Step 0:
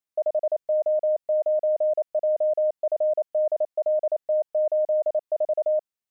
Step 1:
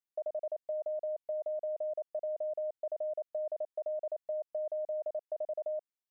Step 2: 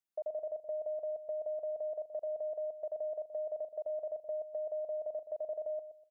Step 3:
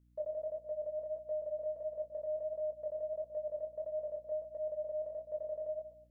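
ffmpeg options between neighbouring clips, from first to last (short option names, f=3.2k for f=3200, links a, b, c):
-af "acompressor=threshold=-24dB:ratio=10,volume=-9dB"
-filter_complex "[0:a]asplit=2[a][b];[b]adelay=123,lowpass=f=860:p=1,volume=-9.5dB,asplit=2[c][d];[d]adelay=123,lowpass=f=860:p=1,volume=0.34,asplit=2[e][f];[f]adelay=123,lowpass=f=860:p=1,volume=0.34,asplit=2[g][h];[h]adelay=123,lowpass=f=860:p=1,volume=0.34[i];[a][c][e][g][i]amix=inputs=5:normalize=0,volume=-1.5dB"
-af "flanger=delay=19.5:depth=4.8:speed=1.5,aeval=exprs='val(0)+0.000355*(sin(2*PI*60*n/s)+sin(2*PI*2*60*n/s)/2+sin(2*PI*3*60*n/s)/3+sin(2*PI*4*60*n/s)/4+sin(2*PI*5*60*n/s)/5)':c=same,asuperstop=centerf=740:order=4:qfactor=3.5,volume=3dB"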